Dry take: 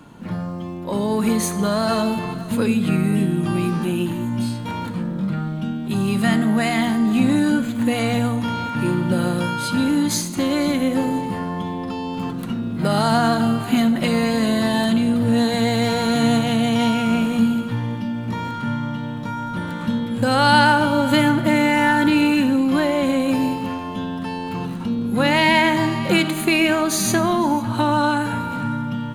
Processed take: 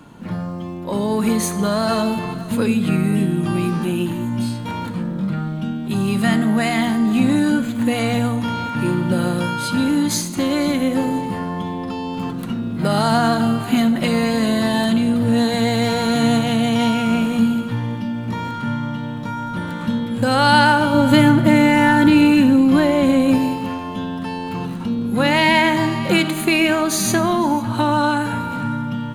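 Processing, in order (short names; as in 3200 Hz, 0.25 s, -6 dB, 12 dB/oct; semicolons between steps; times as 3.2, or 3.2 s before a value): 20.94–23.38 low shelf 310 Hz +7 dB; gain +1 dB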